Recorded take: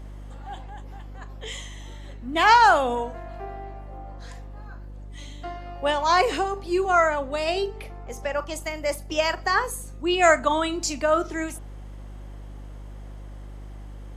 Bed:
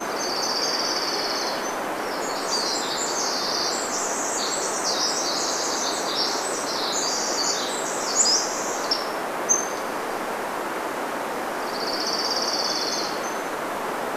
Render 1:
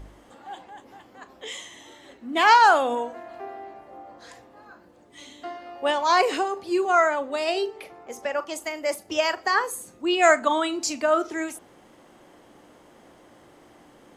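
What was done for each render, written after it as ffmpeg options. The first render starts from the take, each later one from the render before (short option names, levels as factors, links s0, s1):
-af "bandreject=f=50:t=h:w=4,bandreject=f=100:t=h:w=4,bandreject=f=150:t=h:w=4,bandreject=f=200:t=h:w=4,bandreject=f=250:t=h:w=4"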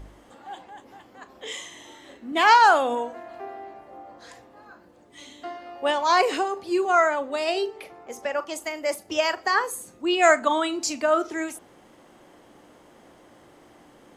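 -filter_complex "[0:a]asettb=1/sr,asplit=3[s0][s1][s2];[s0]atrim=end=1.314[s3];[s1]atrim=start=1.31:end=2.32,asetpts=PTS-STARTPTS,afade=t=in:d=0.004:c=qsin,afade=t=out:st=1.006:d=0.004:c=qsin,asplit=2[s4][s5];[s5]adelay=40,volume=0.562[s6];[s4][s6]amix=inputs=2:normalize=0,atrim=end_sample=44541[s7];[s2]atrim=start=2.316[s8];[s3][s7]acrossfade=d=0.004:c1=hsin:c2=qsin[s9];[s9][s8]acrossfade=d=0.004:c1=qsin:c2=hsin"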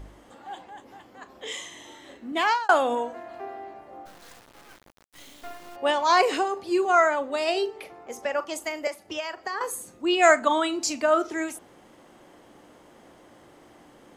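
-filter_complex "[0:a]asplit=3[s0][s1][s2];[s0]afade=t=out:st=4.05:d=0.02[s3];[s1]acrusher=bits=5:dc=4:mix=0:aa=0.000001,afade=t=in:st=4.05:d=0.02,afade=t=out:st=5.75:d=0.02[s4];[s2]afade=t=in:st=5.75:d=0.02[s5];[s3][s4][s5]amix=inputs=3:normalize=0,asettb=1/sr,asplit=3[s6][s7][s8];[s6]atrim=end=8.874[s9];[s7]atrim=start=8.87:end=9.61,asetpts=PTS-STARTPTS,afade=t=in:d=0.004:c=qsin,afade=t=out:st=0.736:d=0.004:c=qsin,acrossover=split=850|4200[s10][s11][s12];[s10]acompressor=threshold=0.0158:ratio=4[s13];[s11]acompressor=threshold=0.0178:ratio=4[s14];[s12]acompressor=threshold=0.00316:ratio=4[s15];[s13][s14][s15]amix=inputs=3:normalize=0[s16];[s8]atrim=start=9.606[s17];[s9][s16]acrossfade=d=0.004:c1=hsin:c2=qsin[s18];[s18][s17]acrossfade=d=0.004:c1=qsin:c2=hsin,asplit=2[s19][s20];[s19]atrim=end=2.69,asetpts=PTS-STARTPTS,afade=t=out:st=2.26:d=0.43[s21];[s20]atrim=start=2.69,asetpts=PTS-STARTPTS,afade=t=in:d=0.004:c=hsin[s22];[s21][s22]concat=n=2:v=0:a=1"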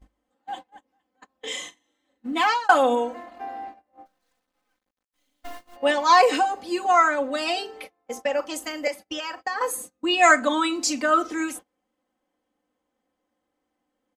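-af "agate=range=0.0355:threshold=0.01:ratio=16:detection=peak,aecho=1:1:3.9:0.99"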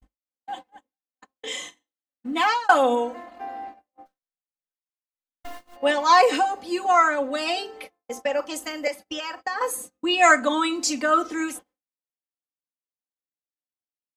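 -af "agate=range=0.0224:threshold=0.00398:ratio=3:detection=peak"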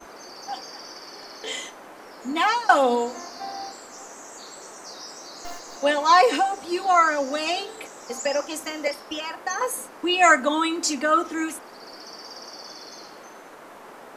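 -filter_complex "[1:a]volume=0.158[s0];[0:a][s0]amix=inputs=2:normalize=0"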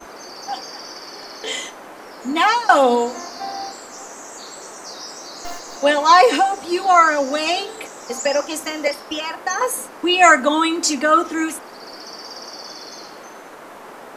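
-af "volume=1.88,alimiter=limit=0.891:level=0:latency=1"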